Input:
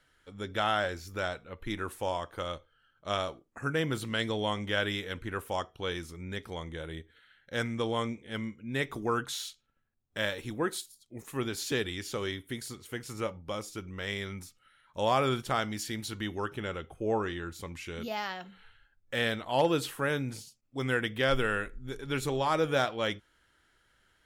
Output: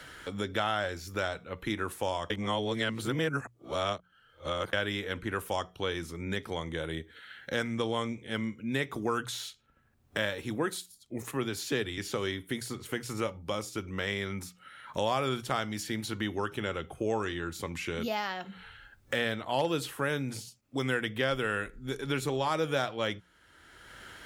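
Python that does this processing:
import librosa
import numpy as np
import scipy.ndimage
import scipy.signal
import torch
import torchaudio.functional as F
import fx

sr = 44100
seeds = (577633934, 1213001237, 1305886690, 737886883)

y = fx.band_widen(x, sr, depth_pct=40, at=(11.31, 11.97))
y = fx.edit(y, sr, fx.reverse_span(start_s=2.3, length_s=2.43), tone=tone)
y = scipy.signal.sosfilt(scipy.signal.butter(2, 41.0, 'highpass', fs=sr, output='sos'), y)
y = fx.hum_notches(y, sr, base_hz=60, count=3)
y = fx.band_squash(y, sr, depth_pct=70)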